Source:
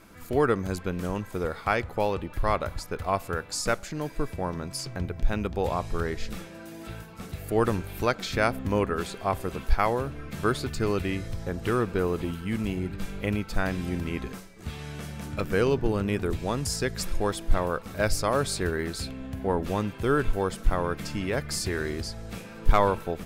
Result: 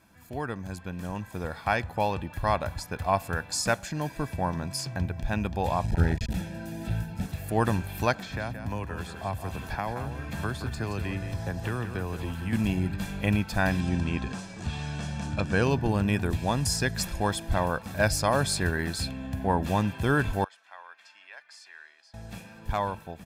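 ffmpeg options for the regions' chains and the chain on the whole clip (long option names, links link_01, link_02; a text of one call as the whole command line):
ffmpeg -i in.wav -filter_complex "[0:a]asettb=1/sr,asplit=3[link_01][link_02][link_03];[link_01]atrim=end=5.844[link_04];[link_02]atrim=start=5.84:end=7.26,asetpts=PTS-STARTPTS,afade=type=in:duration=0.004:curve=qsin,afade=type=out:start_time=1.416:duration=0.004:curve=qsin,lowshelf=frequency=280:gain=12,aeval=exprs='clip(val(0),-1,0.0473)':channel_layout=same,asuperstop=centerf=1100:order=20:qfactor=5.1[link_05];[link_03]atrim=start=7.256[link_06];[link_04][link_05]acrossfade=duration=0.004:curve1=hsin:curve2=qsin[link_07];[link_07][link_06]acrossfade=duration=0.004:curve1=qsin:curve2=hsin,asettb=1/sr,asplit=3[link_08][link_09][link_10];[link_08]atrim=end=8.134[link_11];[link_09]atrim=start=8.13:end=12.53,asetpts=PTS-STARTPTS,afade=type=in:duration=0.004:curve=qsin,afade=type=out:start_time=4.396:duration=0.004:curve=qsin,acrossover=split=100|400|1900[link_12][link_13][link_14][link_15];[link_12]acompressor=threshold=-37dB:ratio=3[link_16];[link_13]acompressor=threshold=-41dB:ratio=3[link_17];[link_14]acompressor=threshold=-39dB:ratio=3[link_18];[link_15]acompressor=threshold=-51dB:ratio=3[link_19];[link_16][link_17][link_18][link_19]amix=inputs=4:normalize=0,aecho=1:1:174:0.355,atrim=end_sample=194040[link_20];[link_10]atrim=start=12.526[link_21];[link_11][link_20]acrossfade=duration=0.004:curve1=hsin:curve2=qsin[link_22];[link_22][link_21]acrossfade=duration=0.004:curve1=qsin:curve2=hsin,asettb=1/sr,asplit=3[link_23][link_24][link_25];[link_23]atrim=end=13.804[link_26];[link_24]atrim=start=13.8:end=15.63,asetpts=PTS-STARTPTS,afade=type=in:duration=0.004:curve=qsin,afade=type=out:start_time=1.826:duration=0.004:curve=qsin,lowpass=frequency=8200:width=0.5412,lowpass=frequency=8200:width=1.3066,equalizer=frequency=2000:width_type=o:width=0.2:gain=-7,acompressor=mode=upward:threshold=-31dB:ratio=2.5:attack=3.2:release=140:knee=2.83:detection=peak[link_27];[link_25]atrim=start=15.626[link_28];[link_26][link_27]acrossfade=duration=0.004:curve1=hsin:curve2=qsin[link_29];[link_29][link_28]acrossfade=duration=0.004:curve1=qsin:curve2=hsin,asettb=1/sr,asplit=3[link_30][link_31][link_32];[link_30]atrim=end=20.444[link_33];[link_31]atrim=start=20.44:end=22.14,asetpts=PTS-STARTPTS,afade=type=in:duration=0.004:curve=qsin,afade=type=out:start_time=1.696:duration=0.004:curve=qsin,highpass=680,lowpass=2100,aderivative[link_34];[link_32]atrim=start=22.136[link_35];[link_33][link_34]acrossfade=duration=0.004:curve1=hsin:curve2=qsin[link_36];[link_36][link_35]acrossfade=duration=0.004:curve1=qsin:curve2=hsin,highpass=60,aecho=1:1:1.2:0.52,dynaudnorm=framelen=190:gausssize=13:maxgain=12dB,volume=-8.5dB" out.wav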